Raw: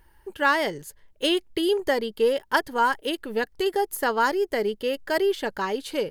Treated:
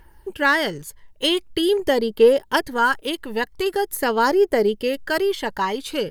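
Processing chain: phaser 0.45 Hz, delay 1.1 ms, feedback 42%; gain +3.5 dB

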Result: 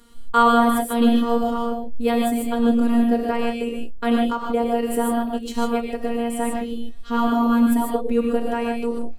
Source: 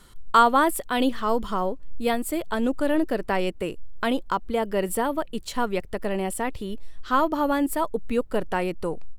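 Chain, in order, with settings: bell 330 Hz +10.5 dB 1.1 oct; resonator 170 Hz, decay 0.21 s, harmonics all, mix 50%; robotiser 234 Hz; non-linear reverb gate 0.17 s rising, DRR -1 dB; gain +3.5 dB

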